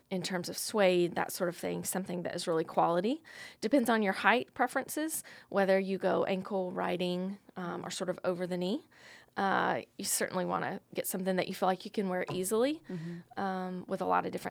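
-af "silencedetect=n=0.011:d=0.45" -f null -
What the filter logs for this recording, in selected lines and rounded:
silence_start: 8.77
silence_end: 9.37 | silence_duration: 0.59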